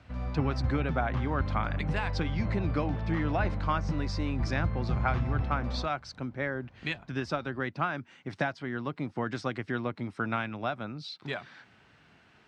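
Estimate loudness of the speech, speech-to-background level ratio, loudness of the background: −34.0 LKFS, −0.5 dB, −33.5 LKFS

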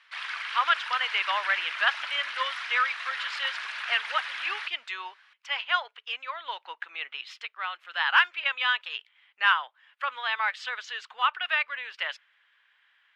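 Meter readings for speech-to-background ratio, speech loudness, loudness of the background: 5.5 dB, −28.5 LKFS, −34.0 LKFS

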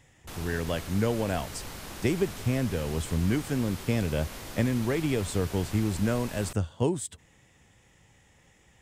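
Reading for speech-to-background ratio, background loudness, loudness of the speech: 11.0 dB, −40.5 LKFS, −29.5 LKFS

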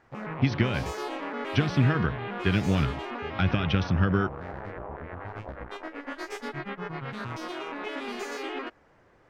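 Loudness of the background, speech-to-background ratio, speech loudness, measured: −36.0 LKFS, 9.0 dB, −27.0 LKFS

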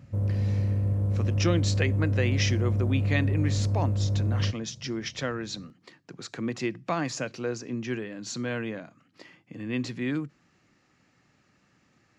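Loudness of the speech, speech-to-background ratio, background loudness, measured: −32.0 LKFS, −5.0 dB, −27.0 LKFS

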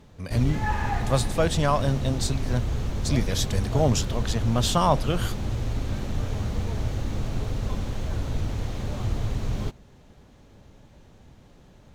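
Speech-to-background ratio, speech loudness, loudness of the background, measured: 4.5 dB, −26.0 LKFS, −30.5 LKFS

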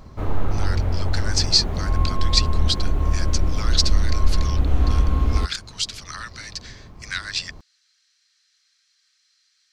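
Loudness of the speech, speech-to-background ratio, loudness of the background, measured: −26.0 LKFS, −2.0 dB, −24.0 LKFS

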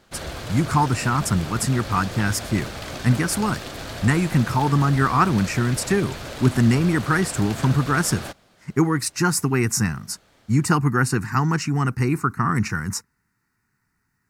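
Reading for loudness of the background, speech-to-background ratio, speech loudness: −33.5 LKFS, 12.0 dB, −21.5 LKFS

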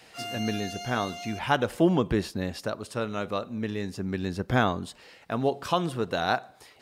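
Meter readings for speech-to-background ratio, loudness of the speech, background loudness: 8.5 dB, −29.0 LKFS, −37.5 LKFS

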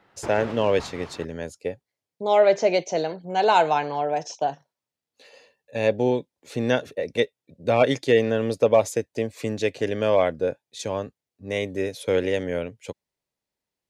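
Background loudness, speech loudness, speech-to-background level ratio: −39.5 LKFS, −24.0 LKFS, 15.5 dB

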